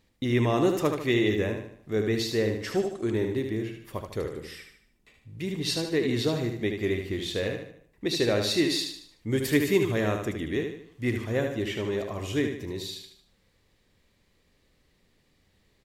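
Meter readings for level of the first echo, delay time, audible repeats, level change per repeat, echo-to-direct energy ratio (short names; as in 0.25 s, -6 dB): -6.0 dB, 75 ms, 4, -7.5 dB, -5.0 dB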